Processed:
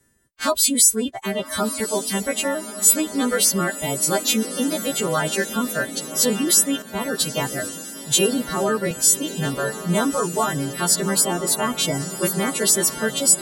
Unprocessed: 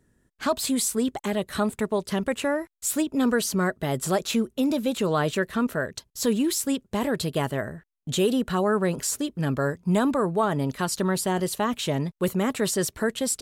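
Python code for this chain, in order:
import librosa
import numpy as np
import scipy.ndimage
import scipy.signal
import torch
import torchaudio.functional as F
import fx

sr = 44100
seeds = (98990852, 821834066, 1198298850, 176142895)

y = fx.freq_snap(x, sr, grid_st=2)
y = fx.dereverb_blind(y, sr, rt60_s=1.3)
y = fx.echo_diffused(y, sr, ms=1172, feedback_pct=61, wet_db=-11.5)
y = fx.band_widen(y, sr, depth_pct=40, at=(6.82, 8.91))
y = y * 10.0 ** (2.5 / 20.0)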